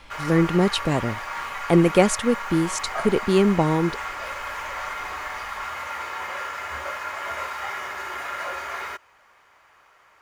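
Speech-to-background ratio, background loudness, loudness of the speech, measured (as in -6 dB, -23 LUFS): 9.5 dB, -31.0 LUFS, -21.5 LUFS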